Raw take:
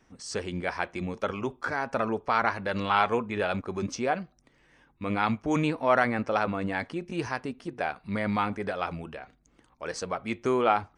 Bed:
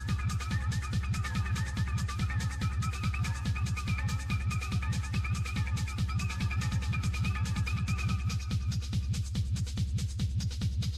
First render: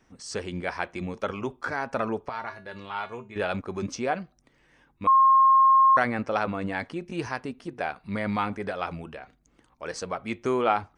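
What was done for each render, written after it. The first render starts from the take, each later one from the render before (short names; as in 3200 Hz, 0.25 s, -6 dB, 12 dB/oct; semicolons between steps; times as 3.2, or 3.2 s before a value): 2.29–3.36 resonator 130 Hz, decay 0.25 s, harmonics odd, mix 80%; 5.07–5.97 bleep 1070 Hz -14 dBFS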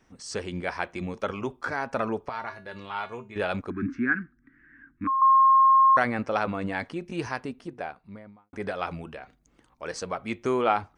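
3.7–5.22 EQ curve 190 Hz 0 dB, 280 Hz +12 dB, 600 Hz -30 dB, 1000 Hz -11 dB, 1600 Hz +14 dB, 3100 Hz -18 dB, 6200 Hz -27 dB; 7.38–8.53 studio fade out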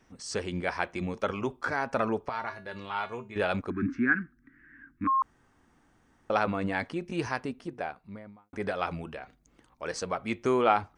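5.22–6.3 room tone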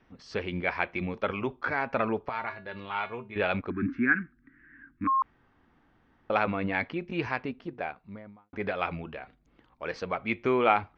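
LPF 4000 Hz 24 dB/oct; dynamic EQ 2300 Hz, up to +7 dB, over -51 dBFS, Q 3.4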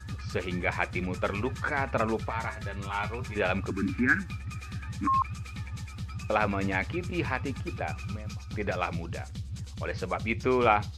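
add bed -6 dB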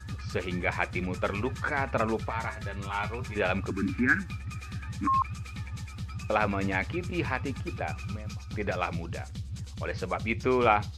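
nothing audible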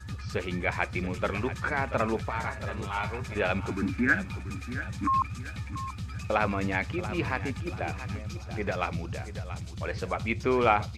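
feedback echo 0.684 s, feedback 38%, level -12.5 dB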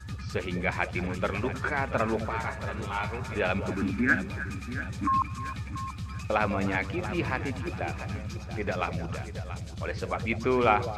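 delay with a stepping band-pass 0.102 s, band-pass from 190 Hz, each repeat 1.4 oct, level -6 dB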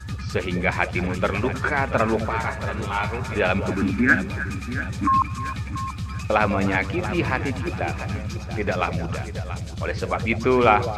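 gain +6.5 dB; limiter -1 dBFS, peak gain reduction 1 dB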